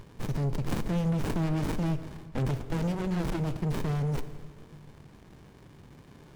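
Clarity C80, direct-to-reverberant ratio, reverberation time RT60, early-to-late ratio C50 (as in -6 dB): 13.5 dB, 11.0 dB, 1.7 s, 12.0 dB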